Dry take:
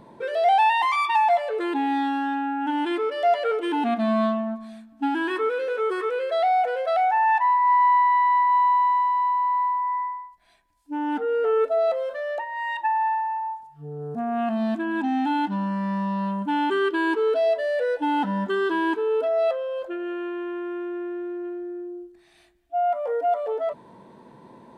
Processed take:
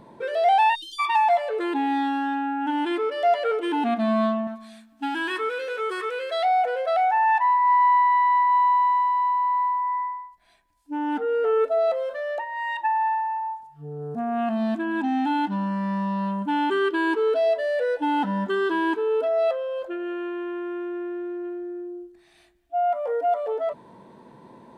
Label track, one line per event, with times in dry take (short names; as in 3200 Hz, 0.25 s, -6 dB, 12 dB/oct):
0.750000	0.990000	spectral delete 420–2800 Hz
4.470000	6.450000	tilt shelf lows -6 dB, about 1300 Hz